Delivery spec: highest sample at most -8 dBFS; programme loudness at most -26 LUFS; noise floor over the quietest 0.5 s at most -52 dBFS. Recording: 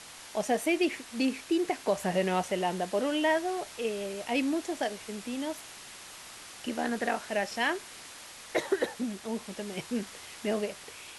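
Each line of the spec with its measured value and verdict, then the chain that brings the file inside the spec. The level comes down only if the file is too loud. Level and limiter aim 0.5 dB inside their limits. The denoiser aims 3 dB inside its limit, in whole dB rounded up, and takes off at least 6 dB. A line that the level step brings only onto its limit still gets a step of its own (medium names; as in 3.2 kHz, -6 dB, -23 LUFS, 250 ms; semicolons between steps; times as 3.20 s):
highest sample -15.0 dBFS: pass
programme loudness -31.5 LUFS: pass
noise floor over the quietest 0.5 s -47 dBFS: fail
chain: noise reduction 8 dB, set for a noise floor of -47 dBFS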